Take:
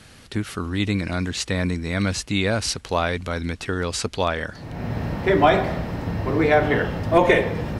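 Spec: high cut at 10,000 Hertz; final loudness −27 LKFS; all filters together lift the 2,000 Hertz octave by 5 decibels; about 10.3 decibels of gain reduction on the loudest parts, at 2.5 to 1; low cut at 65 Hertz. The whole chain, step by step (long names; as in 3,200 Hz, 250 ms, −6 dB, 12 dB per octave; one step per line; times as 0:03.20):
high-pass filter 65 Hz
low-pass filter 10,000 Hz
parametric band 2,000 Hz +6 dB
downward compressor 2.5 to 1, threshold −26 dBFS
level +1 dB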